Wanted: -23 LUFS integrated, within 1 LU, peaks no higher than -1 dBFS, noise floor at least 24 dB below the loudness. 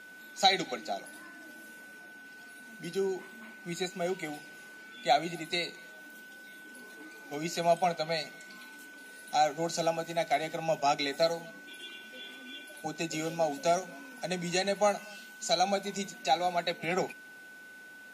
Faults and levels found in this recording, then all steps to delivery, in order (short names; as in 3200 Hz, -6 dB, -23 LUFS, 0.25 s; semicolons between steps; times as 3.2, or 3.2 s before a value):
steady tone 1500 Hz; tone level -48 dBFS; loudness -31.5 LUFS; peak -11.0 dBFS; loudness target -23.0 LUFS
-> notch 1500 Hz, Q 30; gain +8.5 dB